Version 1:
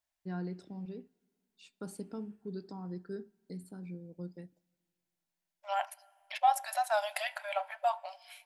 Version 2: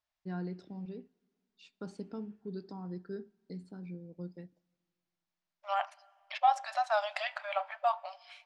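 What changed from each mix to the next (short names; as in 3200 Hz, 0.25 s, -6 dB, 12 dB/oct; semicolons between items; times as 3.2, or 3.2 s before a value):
second voice: remove notch 1200 Hz, Q 5.4; master: add LPF 6000 Hz 24 dB/oct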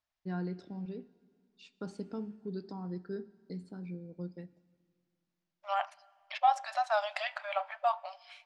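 first voice: send +11.5 dB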